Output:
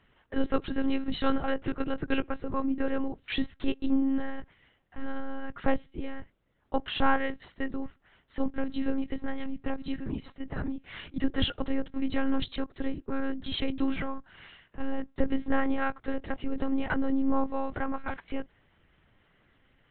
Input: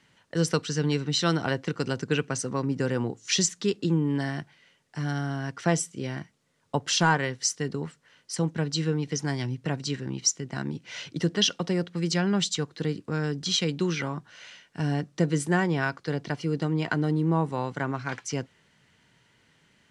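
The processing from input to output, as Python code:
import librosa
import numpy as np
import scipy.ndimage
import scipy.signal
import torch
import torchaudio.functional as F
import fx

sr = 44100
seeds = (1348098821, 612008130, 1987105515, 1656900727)

y = fx.cheby_harmonics(x, sr, harmonics=(2,), levels_db=(-19,), full_scale_db=-8.5)
y = fx.lpc_monotone(y, sr, seeds[0], pitch_hz=270.0, order=10)
y = fx.high_shelf(y, sr, hz=3100.0, db=-11.0)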